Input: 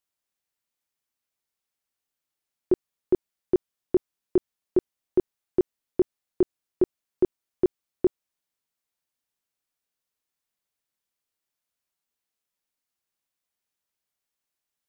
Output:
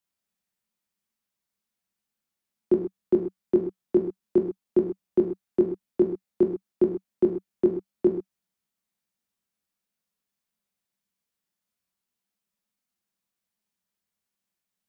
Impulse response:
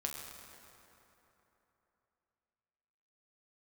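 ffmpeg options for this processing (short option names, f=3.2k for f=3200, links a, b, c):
-filter_complex "[0:a]equalizer=f=190:t=o:w=0.52:g=14,acrossover=split=170|380[a][b][c];[a]alimiter=level_in=8.5dB:limit=-24dB:level=0:latency=1,volume=-8.5dB[d];[d][b][c]amix=inputs=3:normalize=0[e];[1:a]atrim=start_sample=2205,afade=t=out:st=0.18:d=0.01,atrim=end_sample=8379[f];[e][f]afir=irnorm=-1:irlink=0"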